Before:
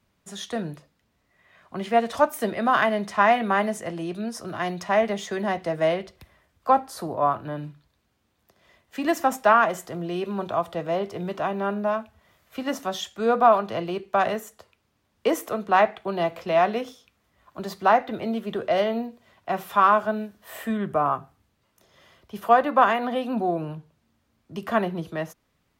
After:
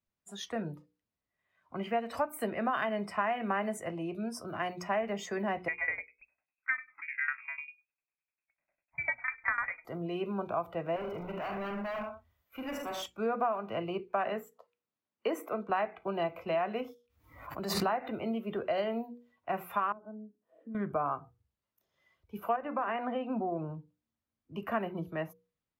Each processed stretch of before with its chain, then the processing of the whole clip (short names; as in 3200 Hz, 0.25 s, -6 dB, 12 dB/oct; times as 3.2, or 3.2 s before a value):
5.68–9.85 tremolo saw down 10 Hz, depth 90% + inverted band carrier 2600 Hz
10.96–13.06 tapped delay 45/78/115/192 ms -7.5/-8/-9/-18 dB + hard clip -29.5 dBFS
14.13–15.7 HPF 170 Hz + bell 11000 Hz -7 dB 1.5 oct
16.81–18.22 gate -49 dBFS, range -7 dB + backwards sustainer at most 65 dB/s
19.92–20.75 band-pass 260 Hz, Q 1.3 + compressor 2.5:1, threshold -39 dBFS
22.56–23.75 air absorption 220 m + compressor 4:1, threshold -22 dBFS
whole clip: spectral noise reduction 16 dB; notches 60/120/180/240/300/360/420/480 Hz; compressor 6:1, threshold -22 dBFS; gain -5.5 dB